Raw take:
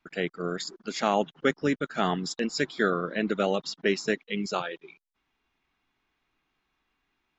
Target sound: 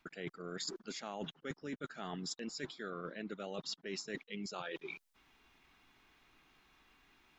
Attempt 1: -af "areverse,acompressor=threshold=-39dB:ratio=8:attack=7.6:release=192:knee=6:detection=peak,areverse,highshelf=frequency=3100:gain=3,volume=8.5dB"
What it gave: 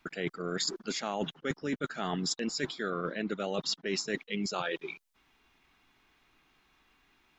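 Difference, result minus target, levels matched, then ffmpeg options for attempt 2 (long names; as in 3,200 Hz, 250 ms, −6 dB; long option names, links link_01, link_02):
downward compressor: peak gain reduction −9.5 dB
-af "areverse,acompressor=threshold=-50dB:ratio=8:attack=7.6:release=192:knee=6:detection=peak,areverse,highshelf=frequency=3100:gain=3,volume=8.5dB"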